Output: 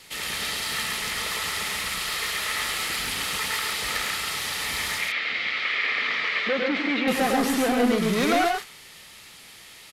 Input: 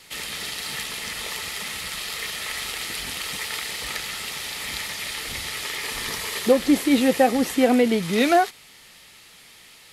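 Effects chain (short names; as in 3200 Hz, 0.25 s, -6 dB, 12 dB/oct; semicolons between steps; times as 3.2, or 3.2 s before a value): dynamic EQ 1300 Hz, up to +7 dB, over -40 dBFS, Q 1.3; soft clip -20 dBFS, distortion -6 dB; 4.98–7.08 speaker cabinet 280–3900 Hz, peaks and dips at 390 Hz -7 dB, 910 Hz -10 dB, 2200 Hz +8 dB; loudspeakers at several distances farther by 36 m -4 dB, 47 m -5 dB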